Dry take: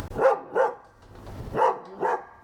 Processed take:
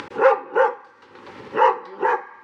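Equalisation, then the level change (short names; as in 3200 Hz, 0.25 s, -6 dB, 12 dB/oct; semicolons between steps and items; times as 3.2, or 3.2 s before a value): BPF 340–4300 Hz; Butterworth band-stop 670 Hz, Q 3.1; bell 2300 Hz +6 dB 0.85 oct; +6.0 dB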